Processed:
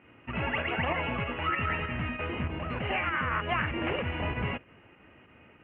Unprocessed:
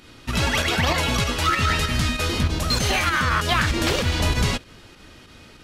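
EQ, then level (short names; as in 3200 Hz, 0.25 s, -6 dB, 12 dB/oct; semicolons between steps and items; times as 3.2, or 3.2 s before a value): HPF 81 Hz; rippled Chebyshev low-pass 2900 Hz, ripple 3 dB; -6.0 dB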